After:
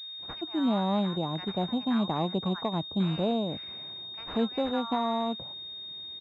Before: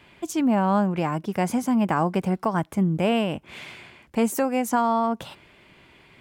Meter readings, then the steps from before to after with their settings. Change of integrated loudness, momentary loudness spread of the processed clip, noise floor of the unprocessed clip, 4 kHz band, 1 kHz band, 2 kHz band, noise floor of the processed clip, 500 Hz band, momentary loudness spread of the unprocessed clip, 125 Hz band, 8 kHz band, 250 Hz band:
−6.5 dB, 11 LU, −55 dBFS, +6.5 dB, −8.0 dB, −11.0 dB, −42 dBFS, −6.0 dB, 12 LU, −5.5 dB, below −25 dB, −5.5 dB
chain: multiband delay without the direct sound highs, lows 190 ms, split 1,200 Hz
switching amplifier with a slow clock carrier 3,700 Hz
level −5.5 dB

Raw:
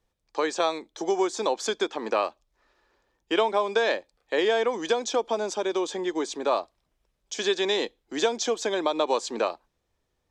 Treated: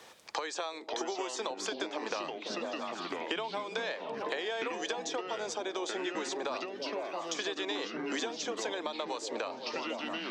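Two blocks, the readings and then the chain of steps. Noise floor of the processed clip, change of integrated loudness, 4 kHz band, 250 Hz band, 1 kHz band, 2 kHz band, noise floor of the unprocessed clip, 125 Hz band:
−46 dBFS, −9.0 dB, −5.5 dB, −7.5 dB, −8.0 dB, −5.5 dB, −77 dBFS, can't be measured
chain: meter weighting curve A
echo through a band-pass that steps 166 ms, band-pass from 210 Hz, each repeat 0.7 octaves, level −12 dB
downward compressor 8 to 1, threshold −40 dBFS, peak gain reduction 19.5 dB
delay with pitch and tempo change per echo 448 ms, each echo −4 semitones, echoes 3, each echo −6 dB
multiband upward and downward compressor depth 70%
level +6 dB

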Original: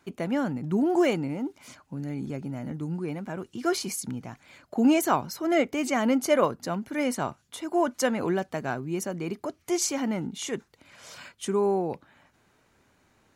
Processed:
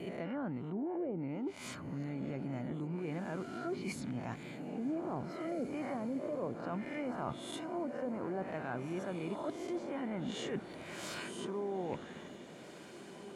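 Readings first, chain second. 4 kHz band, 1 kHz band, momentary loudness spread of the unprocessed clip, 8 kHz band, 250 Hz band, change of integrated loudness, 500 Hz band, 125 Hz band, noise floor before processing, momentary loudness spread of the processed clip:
−11.5 dB, −12.5 dB, 13 LU, −18.5 dB, −11.0 dB, −12.0 dB, −11.5 dB, −7.5 dB, −66 dBFS, 6 LU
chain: peak hold with a rise ahead of every peak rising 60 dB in 0.61 s
treble cut that deepens with the level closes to 520 Hz, closed at −18 dBFS
parametric band 5,800 Hz −7 dB 0.47 octaves
reversed playback
downward compressor 6 to 1, threshold −39 dBFS, peak gain reduction 21 dB
reversed playback
noise gate with hold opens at −50 dBFS
feedback delay with all-pass diffusion 1,844 ms, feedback 56%, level −11 dB
level +2 dB

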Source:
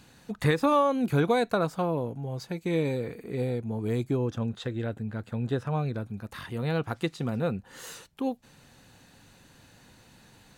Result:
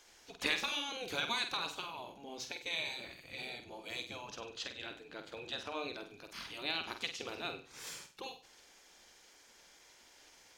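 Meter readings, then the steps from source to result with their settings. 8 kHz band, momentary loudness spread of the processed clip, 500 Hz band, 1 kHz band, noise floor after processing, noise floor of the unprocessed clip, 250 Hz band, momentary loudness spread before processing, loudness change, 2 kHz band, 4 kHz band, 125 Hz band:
+0.5 dB, 25 LU, −17.5 dB, −12.0 dB, −62 dBFS, −57 dBFS, −20.5 dB, 13 LU, −10.5 dB, −2.0 dB, +5.0 dB, −29.0 dB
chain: flat-topped bell 3,900 Hz +13 dB
gate on every frequency bin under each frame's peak −10 dB weak
flutter between parallel walls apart 8.3 metres, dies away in 0.37 s
level −6 dB

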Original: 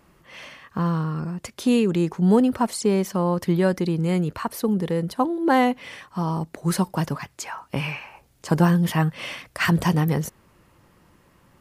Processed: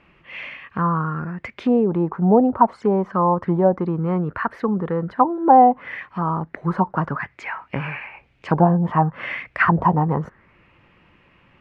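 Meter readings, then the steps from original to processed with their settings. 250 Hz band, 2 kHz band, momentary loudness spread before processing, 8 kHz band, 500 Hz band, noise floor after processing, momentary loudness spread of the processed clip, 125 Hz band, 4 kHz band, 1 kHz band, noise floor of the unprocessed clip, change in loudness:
+0.5 dB, +3.0 dB, 15 LU, below −25 dB, +3.5 dB, −57 dBFS, 15 LU, +0.5 dB, can't be measured, +9.5 dB, −59 dBFS, +3.0 dB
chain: envelope-controlled low-pass 740–2,600 Hz down, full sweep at −15 dBFS

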